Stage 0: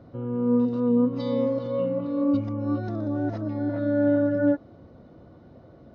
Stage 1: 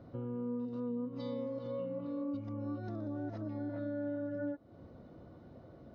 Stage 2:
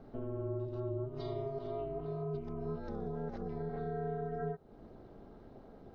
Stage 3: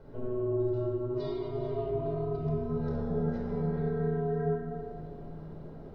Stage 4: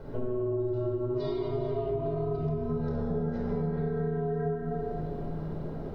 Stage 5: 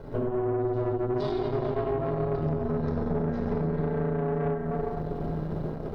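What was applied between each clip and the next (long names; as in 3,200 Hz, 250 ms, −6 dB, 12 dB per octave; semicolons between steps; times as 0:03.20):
downward compressor 4 to 1, threshold −33 dBFS, peak gain reduction 13.5 dB; level −4.5 dB
ring modulation 130 Hz; level +3 dB
convolution reverb RT60 2.0 s, pre-delay 26 ms, DRR −2.5 dB; level −1.5 dB
downward compressor, threshold −36 dBFS, peak gain reduction 10.5 dB; level +8.5 dB
tube saturation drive 29 dB, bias 0.8; level +7.5 dB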